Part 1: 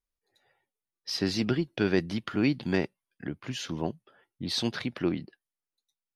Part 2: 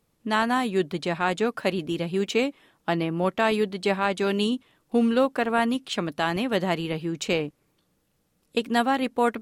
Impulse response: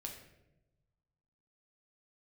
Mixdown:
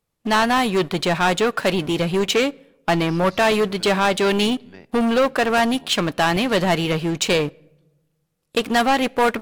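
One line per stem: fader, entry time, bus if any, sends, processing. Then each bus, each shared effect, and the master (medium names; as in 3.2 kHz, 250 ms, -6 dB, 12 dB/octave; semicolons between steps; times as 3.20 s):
-15.0 dB, 2.00 s, send -14.5 dB, none
0.0 dB, 0.00 s, send -18 dB, waveshaping leveller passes 3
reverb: on, RT60 1.0 s, pre-delay 6 ms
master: peaking EQ 260 Hz -5.5 dB 1.4 oct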